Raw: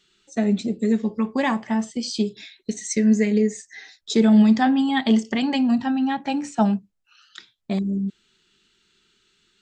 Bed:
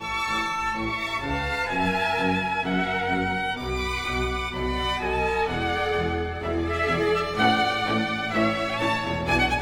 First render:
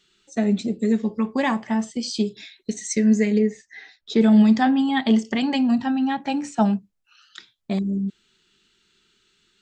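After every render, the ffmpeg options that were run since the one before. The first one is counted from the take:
ffmpeg -i in.wav -filter_complex "[0:a]asettb=1/sr,asplit=3[link_01][link_02][link_03];[link_01]atrim=end=3.394[link_04];[link_02]atrim=start=3.39:end=4.21,asetpts=PTS-STARTPTS,afade=type=in:duration=0.004:curve=qsin,afade=type=out:start_time=0.816:duration=0.004:curve=qsin,lowpass=3500[link_05];[link_03]atrim=start=4.206[link_06];[link_04][link_05]acrossfade=duration=0.004:curve1=hsin:curve2=qsin[link_07];[link_07][link_06]acrossfade=duration=0.004:curve1=qsin:curve2=hsin,asettb=1/sr,asplit=3[link_08][link_09][link_10];[link_08]atrim=end=4.714[link_11];[link_09]atrim=start=4.71:end=5.2,asetpts=PTS-STARTPTS,afade=type=in:duration=0.004:curve=qsin,afade=type=out:start_time=0.486:duration=0.004:curve=qsin,highshelf=frequency=6400:gain=-6[link_12];[link_10]atrim=start=5.196[link_13];[link_11][link_12]acrossfade=duration=0.004:curve1=hsin:curve2=qsin[link_14];[link_14][link_13]acrossfade=duration=0.004:curve1=qsin:curve2=hsin" out.wav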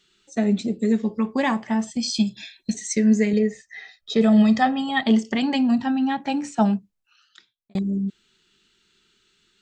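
ffmpeg -i in.wav -filter_complex "[0:a]asettb=1/sr,asplit=3[link_01][link_02][link_03];[link_01]atrim=end=1.874[link_04];[link_02]atrim=start=1.87:end=2.75,asetpts=PTS-STARTPTS,afade=type=in:duration=0.004:curve=qsin,afade=type=out:start_time=0.876:duration=0.004:curve=qsin,aecho=1:1:1.2:0.94,atrim=end_sample=38808[link_05];[link_03]atrim=start=2.746[link_06];[link_04][link_05]acrossfade=duration=0.004:curve1=hsin:curve2=qsin[link_07];[link_07][link_06]acrossfade=duration=0.004:curve1=qsin:curve2=hsin,asettb=1/sr,asplit=3[link_08][link_09][link_10];[link_08]atrim=end=3.334[link_11];[link_09]atrim=start=3.33:end=5.03,asetpts=PTS-STARTPTS,afade=type=in:duration=0.004:curve=qsin,afade=type=out:start_time=1.696:duration=0.004:curve=qsin,aecho=1:1:1.6:0.65,atrim=end_sample=74970[link_12];[link_10]atrim=start=5.026[link_13];[link_11][link_12]acrossfade=duration=0.004:curve1=hsin:curve2=qsin[link_14];[link_14][link_13]acrossfade=duration=0.004:curve1=qsin:curve2=hsin,asplit=2[link_15][link_16];[link_15]atrim=end=7.75,asetpts=PTS-STARTPTS,afade=type=out:start_time=6.72:duration=1.03[link_17];[link_16]atrim=start=7.75,asetpts=PTS-STARTPTS,afade=type=in:duration=0.004:curve=hsin[link_18];[link_17][link_18]concat=n=2:v=0:a=1" out.wav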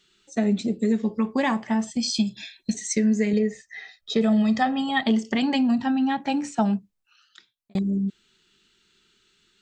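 ffmpeg -i in.wav -af "acompressor=threshold=-17dB:ratio=6" out.wav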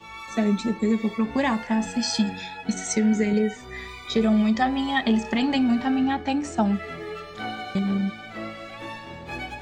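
ffmpeg -i in.wav -i bed.wav -filter_complex "[1:a]volume=-12dB[link_01];[0:a][link_01]amix=inputs=2:normalize=0" out.wav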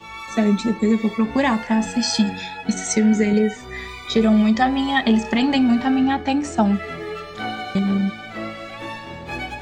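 ffmpeg -i in.wav -af "volume=4.5dB" out.wav

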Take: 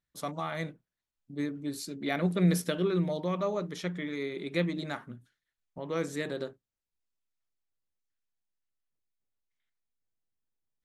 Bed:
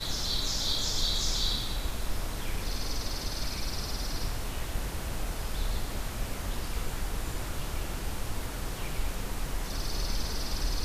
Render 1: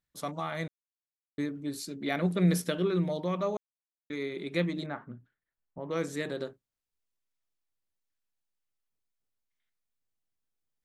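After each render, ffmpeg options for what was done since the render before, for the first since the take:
ffmpeg -i in.wav -filter_complex "[0:a]asettb=1/sr,asplit=3[link_01][link_02][link_03];[link_01]atrim=end=4.864[link_04];[link_02]atrim=start=4.86:end=5.91,asetpts=PTS-STARTPTS,afade=type=in:duration=0.004:curve=qsin,afade=type=out:start_time=1.046:duration=0.004:curve=qsin,lowpass=1600[link_05];[link_03]atrim=start=5.906[link_06];[link_04][link_05]acrossfade=duration=0.004:curve1=hsin:curve2=qsin[link_07];[link_07][link_06]acrossfade=duration=0.004:curve1=qsin:curve2=hsin,asplit=5[link_08][link_09][link_10][link_11][link_12];[link_08]atrim=end=0.68,asetpts=PTS-STARTPTS,afade=type=out:start_time=0.676:duration=0.004:curve=hsin[link_13];[link_09]atrim=start=0.68:end=1.38,asetpts=PTS-STARTPTS,volume=0[link_14];[link_10]atrim=start=1.38:end=3.57,asetpts=PTS-STARTPTS,afade=type=in:duration=0.004:curve=hsin,afade=type=out:start_time=2.186:duration=0.004:curve=hsin[link_15];[link_11]atrim=start=3.57:end=4.1,asetpts=PTS-STARTPTS,volume=0[link_16];[link_12]atrim=start=4.1,asetpts=PTS-STARTPTS,afade=type=in:duration=0.004:curve=hsin[link_17];[link_13][link_14][link_15][link_16][link_17]concat=n=5:v=0:a=1" out.wav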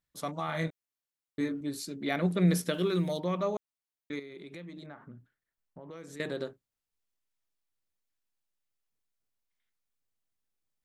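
ffmpeg -i in.wav -filter_complex "[0:a]asettb=1/sr,asplit=3[link_01][link_02][link_03];[link_01]atrim=end=0.464[link_04];[link_02]atrim=start=0.46:end=1.61,asetpts=PTS-STARTPTS,afade=type=in:duration=0.004:curve=qsin,afade=type=out:start_time=1.146:duration=0.004:curve=qsin,asplit=2[link_05][link_06];[link_06]adelay=25,volume=-3dB[link_07];[link_05][link_07]amix=inputs=2:normalize=0,atrim=end_sample=50715[link_08];[link_03]atrim=start=1.606[link_09];[link_04][link_08]acrossfade=duration=0.004:curve1=hsin:curve2=qsin[link_10];[link_10][link_09]acrossfade=duration=0.004:curve1=qsin:curve2=hsin,asplit=3[link_11][link_12][link_13];[link_11]afade=type=out:start_time=2.73:duration=0.02[link_14];[link_12]aemphasis=mode=production:type=75fm,afade=type=in:start_time=2.73:duration=0.02,afade=type=out:start_time=3.18:duration=0.02[link_15];[link_13]afade=type=in:start_time=3.18:duration=0.02[link_16];[link_14][link_15][link_16]amix=inputs=3:normalize=0,asettb=1/sr,asplit=3[link_17][link_18][link_19];[link_17]atrim=end=4.194[link_20];[link_18]atrim=start=4.19:end=6.2,asetpts=PTS-STARTPTS,afade=type=in:duration=0.004:curve=qsin,afade=type=out:start_time=2.006:duration=0.004:curve=qsin,acompressor=threshold=-44dB:ratio=4:attack=3.2:release=140:knee=1:detection=peak[link_21];[link_19]atrim=start=6.196[link_22];[link_20][link_21]acrossfade=duration=0.004:curve1=hsin:curve2=qsin[link_23];[link_23][link_22]acrossfade=duration=0.004:curve1=qsin:curve2=hsin" out.wav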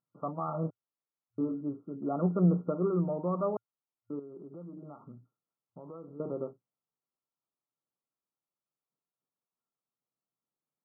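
ffmpeg -i in.wav -af "afftfilt=real='re*between(b*sr/4096,110,1400)':imag='im*between(b*sr/4096,110,1400)':win_size=4096:overlap=0.75" out.wav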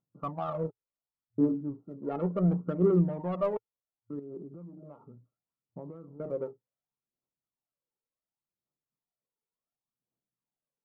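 ffmpeg -i in.wav -af "adynamicsmooth=sensitivity=1.5:basefreq=1100,aphaser=in_gain=1:out_gain=1:delay=2.4:decay=0.56:speed=0.69:type=triangular" out.wav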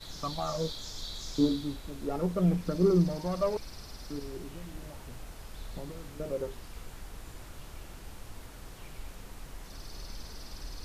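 ffmpeg -i in.wav -i bed.wav -filter_complex "[1:a]volume=-11.5dB[link_01];[0:a][link_01]amix=inputs=2:normalize=0" out.wav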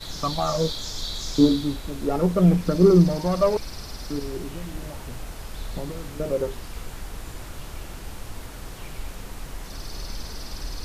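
ffmpeg -i in.wav -af "volume=9dB" out.wav

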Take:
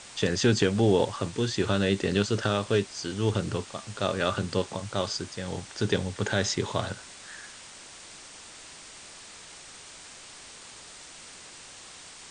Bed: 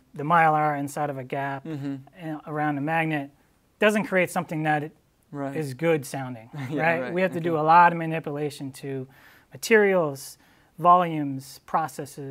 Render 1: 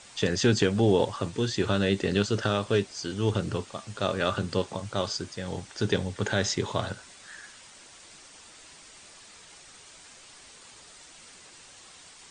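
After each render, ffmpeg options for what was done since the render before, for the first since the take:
ffmpeg -i in.wav -af "afftdn=noise_reduction=6:noise_floor=-47" out.wav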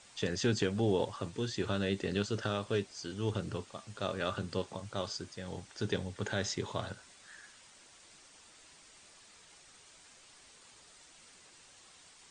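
ffmpeg -i in.wav -af "volume=-8dB" out.wav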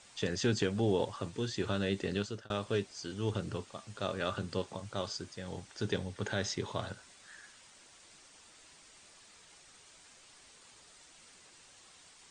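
ffmpeg -i in.wav -filter_complex "[0:a]asettb=1/sr,asplit=3[link_01][link_02][link_03];[link_01]atrim=end=5.984[link_04];[link_02]atrim=start=5.98:end=6.79,asetpts=PTS-STARTPTS,afade=type=in:duration=0.004:curve=qsin,afade=type=out:start_time=0.806:duration=0.004:curve=qsin,bandreject=frequency=7200:width=12[link_05];[link_03]atrim=start=6.786[link_06];[link_04][link_05]acrossfade=duration=0.004:curve1=hsin:curve2=qsin[link_07];[link_07][link_06]acrossfade=duration=0.004:curve1=qsin:curve2=hsin,asplit=2[link_08][link_09];[link_08]atrim=end=2.5,asetpts=PTS-STARTPTS,afade=type=out:start_time=2.01:duration=0.49:curve=qsin[link_10];[link_09]atrim=start=2.5,asetpts=PTS-STARTPTS,afade=type=in:duration=0.004:curve=hsin[link_11];[link_10][link_11]concat=n=2:v=0:a=1" out.wav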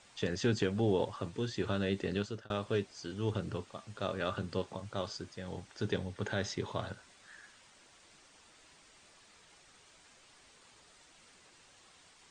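ffmpeg -i in.wav -af "highshelf=frequency=5000:gain=-7.5" out.wav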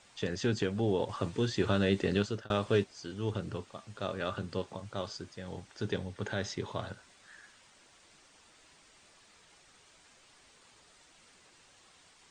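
ffmpeg -i in.wav -filter_complex "[0:a]asettb=1/sr,asplit=3[link_01][link_02][link_03];[link_01]atrim=end=1.094[link_04];[link_02]atrim=start=1.09:end=2.84,asetpts=PTS-STARTPTS,afade=type=in:duration=0.004:curve=qsin,afade=type=out:start_time=1.746:duration=0.004:curve=qsin,acontrast=29[link_05];[link_03]atrim=start=2.836[link_06];[link_04][link_05]acrossfade=duration=0.004:curve1=hsin:curve2=qsin[link_07];[link_07][link_06]acrossfade=duration=0.004:curve1=qsin:curve2=hsin" out.wav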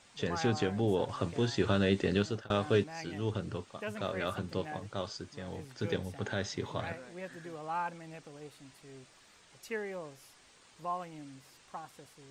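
ffmpeg -i in.wav -i bed.wav -filter_complex "[1:a]volume=-20dB[link_01];[0:a][link_01]amix=inputs=2:normalize=0" out.wav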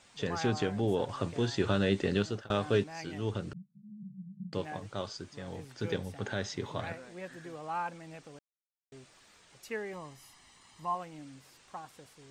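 ffmpeg -i in.wav -filter_complex "[0:a]asettb=1/sr,asplit=3[link_01][link_02][link_03];[link_01]atrim=end=3.534[link_04];[link_02]atrim=start=3.53:end=4.53,asetpts=PTS-STARTPTS,afade=type=in:duration=0.004:curve=qsin,afade=type=out:start_time=0.996:duration=0.004:curve=qsin,asuperpass=centerf=170:order=12:qfactor=2.2[link_05];[link_03]atrim=start=4.526[link_06];[link_04][link_05]acrossfade=duration=0.004:curve1=hsin:curve2=qsin[link_07];[link_07][link_06]acrossfade=duration=0.004:curve1=qsin:curve2=hsin,asettb=1/sr,asplit=3[link_08][link_09][link_10];[link_08]atrim=end=9.934[link_11];[link_09]atrim=start=9.93:end=10.95,asetpts=PTS-STARTPTS,afade=type=in:duration=0.004:curve=qsin,afade=type=out:start_time=1.016:duration=0.004:curve=qsin,aecho=1:1:1:0.59,atrim=end_sample=44982[link_12];[link_10]atrim=start=10.946[link_13];[link_11][link_12]acrossfade=duration=0.004:curve1=hsin:curve2=qsin[link_14];[link_14][link_13]acrossfade=duration=0.004:curve1=qsin:curve2=hsin,asplit=3[link_15][link_16][link_17];[link_15]atrim=end=8.39,asetpts=PTS-STARTPTS,afade=type=out:start_time=8.386:duration=0.004:curve=hsin[link_18];[link_16]atrim=start=8.39:end=8.92,asetpts=PTS-STARTPTS,volume=0[link_19];[link_17]atrim=start=8.92,asetpts=PTS-STARTPTS,afade=type=in:duration=0.004:curve=hsin[link_20];[link_18][link_19][link_20]concat=n=3:v=0:a=1" out.wav

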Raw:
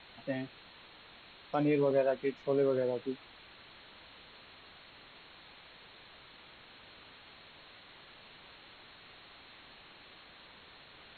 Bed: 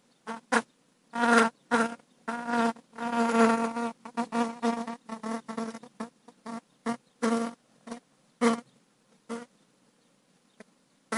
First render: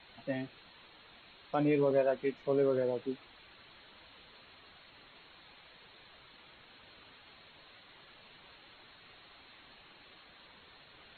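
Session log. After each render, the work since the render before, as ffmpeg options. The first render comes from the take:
ffmpeg -i in.wav -af "afftdn=noise_reduction=6:noise_floor=-56" out.wav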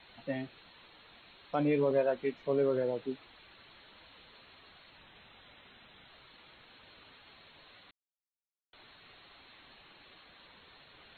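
ffmpeg -i in.wav -filter_complex "[0:a]asettb=1/sr,asplit=3[link_01][link_02][link_03];[link_01]atrim=end=4.974[link_04];[link_02]atrim=start=4.97:end=6.08,asetpts=PTS-STARTPTS,afade=type=in:duration=0.004:curve=qsin,afade=type=out:start_time=1.106:duration=0.004:curve=qsin,afreqshift=-250[link_05];[link_03]atrim=start=6.076[link_06];[link_04][link_05]acrossfade=duration=0.004:curve1=hsin:curve2=qsin[link_07];[link_07][link_06]acrossfade=duration=0.004:curve1=qsin:curve2=hsin,asplit=3[link_08][link_09][link_10];[link_08]atrim=end=7.91,asetpts=PTS-STARTPTS,afade=type=out:start_time=7.906:duration=0.004:curve=hsin[link_11];[link_09]atrim=start=7.91:end=8.73,asetpts=PTS-STARTPTS,volume=0[link_12];[link_10]atrim=start=8.73,asetpts=PTS-STARTPTS,afade=type=in:duration=0.004:curve=hsin[link_13];[link_11][link_12][link_13]concat=n=3:v=0:a=1" out.wav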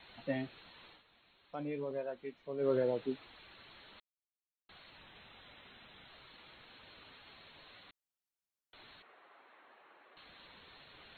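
ffmpeg -i in.wav -filter_complex "[0:a]asettb=1/sr,asplit=3[link_01][link_02][link_03];[link_01]atrim=end=9.024[link_04];[link_02]atrim=start=9.02:end=10.17,asetpts=PTS-STARTPTS,afade=type=in:duration=0.004:curve=qsin,afade=type=out:start_time=1.146:duration=0.004:curve=qsin,asuperpass=centerf=810:order=4:qfactor=0.6[link_05];[link_03]atrim=start=10.166[link_06];[link_04][link_05]acrossfade=duration=0.004:curve1=hsin:curve2=qsin[link_07];[link_07][link_06]acrossfade=duration=0.004:curve1=qsin:curve2=hsin,asplit=5[link_08][link_09][link_10][link_11][link_12];[link_08]atrim=end=1.03,asetpts=PTS-STARTPTS,afade=type=out:start_time=0.9:duration=0.13:silence=0.281838[link_13];[link_09]atrim=start=1.03:end=2.58,asetpts=PTS-STARTPTS,volume=-11dB[link_14];[link_10]atrim=start=2.58:end=4,asetpts=PTS-STARTPTS,afade=type=in:duration=0.13:silence=0.281838,afade=type=out:start_time=1.416:duration=0.004:curve=hsin[link_15];[link_11]atrim=start=4:end=4.69,asetpts=PTS-STARTPTS,volume=0[link_16];[link_12]atrim=start=4.69,asetpts=PTS-STARTPTS,afade=type=in:duration=0.004:curve=hsin[link_17];[link_13][link_14][link_15][link_16][link_17]concat=n=5:v=0:a=1" out.wav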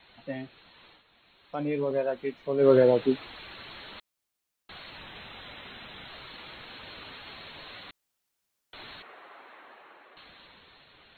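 ffmpeg -i in.wav -af "dynaudnorm=framelen=230:gausssize=13:maxgain=12.5dB" out.wav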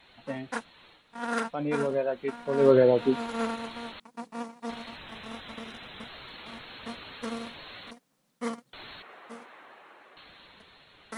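ffmpeg -i in.wav -i bed.wav -filter_complex "[1:a]volume=-9dB[link_01];[0:a][link_01]amix=inputs=2:normalize=0" out.wav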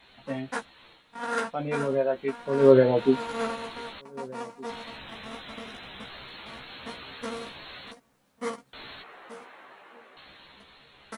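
ffmpeg -i in.wav -filter_complex "[0:a]asplit=2[link_01][link_02];[link_02]adelay=15,volume=-4dB[link_03];[link_01][link_03]amix=inputs=2:normalize=0,asplit=2[link_04][link_05];[link_05]adelay=1516,volume=-23dB,highshelf=frequency=4000:gain=-34.1[link_06];[link_04][link_06]amix=inputs=2:normalize=0" out.wav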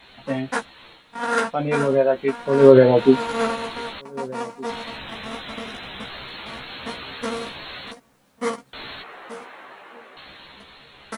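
ffmpeg -i in.wav -af "volume=7.5dB,alimiter=limit=-1dB:level=0:latency=1" out.wav

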